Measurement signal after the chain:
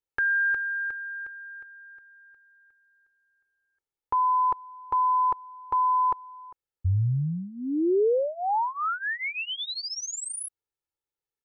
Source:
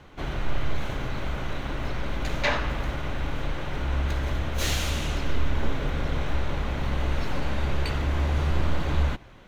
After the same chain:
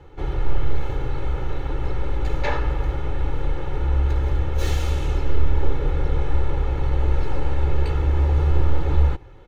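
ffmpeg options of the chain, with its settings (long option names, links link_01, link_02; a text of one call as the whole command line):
ffmpeg -i in.wav -af "tiltshelf=frequency=1300:gain=6,aecho=1:1:2.3:0.86,volume=-3.5dB" out.wav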